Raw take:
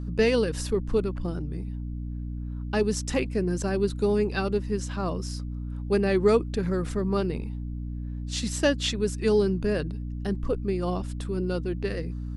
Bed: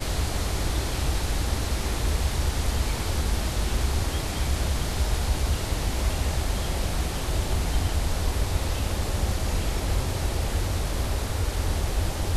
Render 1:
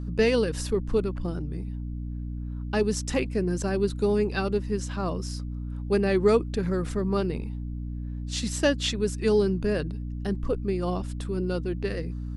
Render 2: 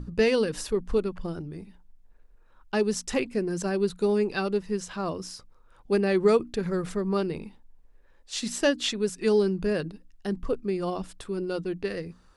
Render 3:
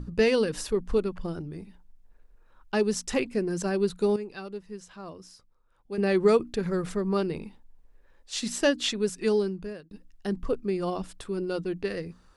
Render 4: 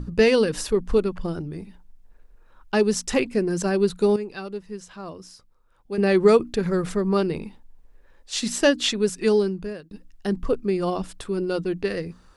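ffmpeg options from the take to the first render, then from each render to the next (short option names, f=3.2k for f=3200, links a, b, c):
-af anull
-af "bandreject=f=60:t=h:w=6,bandreject=f=120:t=h:w=6,bandreject=f=180:t=h:w=6,bandreject=f=240:t=h:w=6,bandreject=f=300:t=h:w=6"
-filter_complex "[0:a]asplit=4[a][b][c][d];[a]atrim=end=4.162[e];[b]atrim=start=4.158:end=5.982,asetpts=PTS-STARTPTS,volume=-11dB[f];[c]atrim=start=5.978:end=9.91,asetpts=PTS-STARTPTS,afade=t=out:st=3.192:d=0.74[g];[d]atrim=start=9.91,asetpts=PTS-STARTPTS,afade=t=in:d=0.004:c=hsin[h];[e][f]acrossfade=d=0.004:c1=hsin:c2=hsin[i];[g][h]concat=n=2:v=0:a=1[j];[i][j]acrossfade=d=0.004:c1=hsin:c2=hsin"
-af "volume=5dB"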